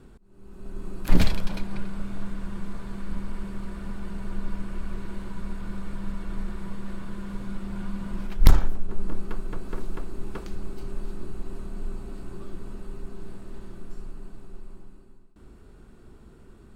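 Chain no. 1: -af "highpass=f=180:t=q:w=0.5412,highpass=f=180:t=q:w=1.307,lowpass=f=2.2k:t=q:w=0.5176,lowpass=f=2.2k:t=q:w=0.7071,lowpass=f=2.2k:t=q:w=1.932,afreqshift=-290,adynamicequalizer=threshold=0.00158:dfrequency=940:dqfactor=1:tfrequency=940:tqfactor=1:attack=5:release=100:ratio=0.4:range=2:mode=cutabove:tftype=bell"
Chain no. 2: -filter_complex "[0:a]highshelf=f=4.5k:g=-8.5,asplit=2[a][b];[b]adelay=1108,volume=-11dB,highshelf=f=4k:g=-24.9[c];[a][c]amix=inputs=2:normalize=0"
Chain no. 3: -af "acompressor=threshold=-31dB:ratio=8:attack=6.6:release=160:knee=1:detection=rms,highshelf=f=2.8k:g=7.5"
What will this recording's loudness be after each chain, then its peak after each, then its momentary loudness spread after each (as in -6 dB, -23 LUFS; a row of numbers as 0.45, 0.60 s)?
-41.5, -34.5, -44.5 LUFS; -15.0, -3.5, -14.0 dBFS; 20, 23, 11 LU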